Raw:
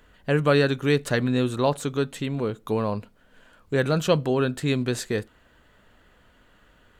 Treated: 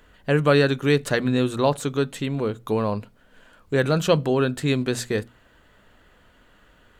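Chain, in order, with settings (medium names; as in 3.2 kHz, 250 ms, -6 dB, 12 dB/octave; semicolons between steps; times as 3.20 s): hum notches 60/120/180/240 Hz; trim +2 dB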